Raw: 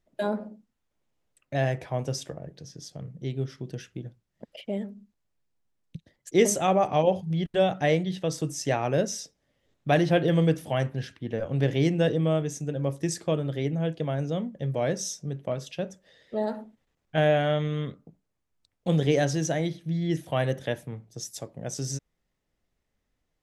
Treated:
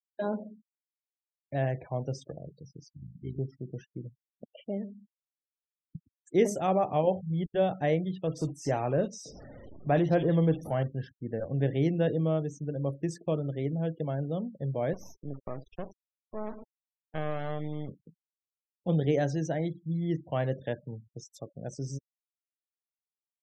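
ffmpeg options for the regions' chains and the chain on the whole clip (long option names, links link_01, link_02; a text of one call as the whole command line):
ffmpeg -i in.wav -filter_complex "[0:a]asettb=1/sr,asplit=3[link_01][link_02][link_03];[link_01]atrim=end=2.934[link_04];[link_02]atrim=start=2.93:end=3.39,asetpts=PTS-STARTPTS,afade=type=in:duration=0.004:curve=qsin,afade=type=out:start_time=0.456:duration=0.004:curve=qsin,tremolo=f=53:d=0.71,asuperstop=centerf=850:order=12:qfactor=0.66[link_05];[link_03]atrim=start=3.386[link_06];[link_04][link_05]acrossfade=duration=0.004:curve1=hsin:curve2=qsin[link_07];[link_07][link_06]acrossfade=duration=0.004:curve1=qsin:curve2=hsin,asettb=1/sr,asplit=3[link_08][link_09][link_10];[link_08]atrim=end=8.274[link_11];[link_09]atrim=start=8.27:end=10.83,asetpts=PTS-STARTPTS,afade=type=in:duration=0.004:curve=qsin,afade=type=out:start_time=2.556:duration=0.004:curve=qsin,aeval=exprs='val(0)+0.5*0.0158*sgn(val(0))':channel_layout=same,acrossover=split=2700[link_12][link_13];[link_13]adelay=50[link_14];[link_12][link_14]amix=inputs=2:normalize=0,atrim=end_sample=112896[link_15];[link_10]atrim=start=10.826[link_16];[link_11][link_15]acrossfade=duration=0.004:curve1=hsin:curve2=qsin[link_17];[link_17][link_16]acrossfade=duration=0.004:curve1=qsin:curve2=hsin,asettb=1/sr,asplit=3[link_18][link_19][link_20];[link_18]atrim=end=14.934[link_21];[link_19]atrim=start=14.93:end=17.89,asetpts=PTS-STARTPTS,afade=type=in:duration=0.004:curve=qsin,afade=type=out:start_time=2.956:duration=0.004:curve=qsin,highshelf=frequency=8700:gain=-8,acompressor=threshold=-25dB:ratio=2:attack=3.2:release=140:knee=1:detection=peak,acrusher=bits=4:dc=4:mix=0:aa=0.000001[link_22];[link_20]atrim=start=17.886[link_23];[link_21][link_22]acrossfade=duration=0.004:curve1=hsin:curve2=qsin[link_24];[link_24][link_23]acrossfade=duration=0.004:curve1=qsin:curve2=hsin,afftfilt=real='re*gte(hypot(re,im),0.0112)':imag='im*gte(hypot(re,im),0.0112)':win_size=1024:overlap=0.75,highshelf=frequency=2400:gain=-11.5,volume=-3dB" out.wav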